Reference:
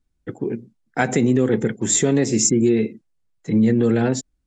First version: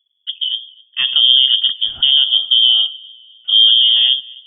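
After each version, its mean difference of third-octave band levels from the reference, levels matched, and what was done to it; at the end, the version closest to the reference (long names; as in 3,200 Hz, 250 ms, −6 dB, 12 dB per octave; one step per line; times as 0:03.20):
19.0 dB: octave-band graphic EQ 125/250/500/1,000/2,000 Hz +10/+4/+4/−5/−8 dB
voice inversion scrambler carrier 3,400 Hz
on a send: delay with a high-pass on its return 256 ms, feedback 45%, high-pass 2,000 Hz, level −24 dB
on the sum: level −1 dB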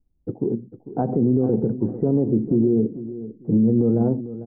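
7.5 dB: Bessel low-pass filter 550 Hz, order 8
brickwall limiter −14 dBFS, peak gain reduction 5 dB
on a send: repeating echo 448 ms, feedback 22%, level −14 dB
on the sum: level +3 dB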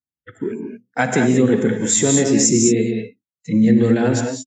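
5.0 dB: high-pass filter 110 Hz
noise reduction from a noise print of the clip's start 21 dB
reverb whose tail is shaped and stops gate 240 ms rising, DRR 3 dB
level +1.5 dB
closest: third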